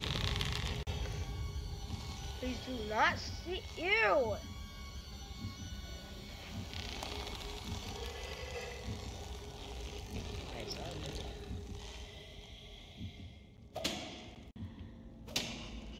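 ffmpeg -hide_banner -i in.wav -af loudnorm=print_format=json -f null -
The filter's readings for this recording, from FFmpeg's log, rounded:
"input_i" : "-40.0",
"input_tp" : "-17.6",
"input_lra" : "9.6",
"input_thresh" : "-50.5",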